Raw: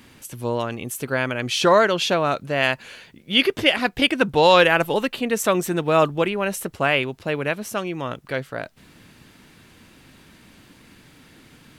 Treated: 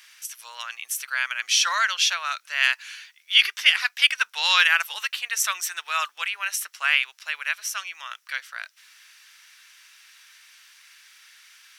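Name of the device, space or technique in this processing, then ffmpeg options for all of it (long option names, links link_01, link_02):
headphones lying on a table: -af "highpass=frequency=1400:width=0.5412,highpass=frequency=1400:width=1.3066,equalizer=frequency=5700:width_type=o:width=0.25:gain=9,volume=2dB"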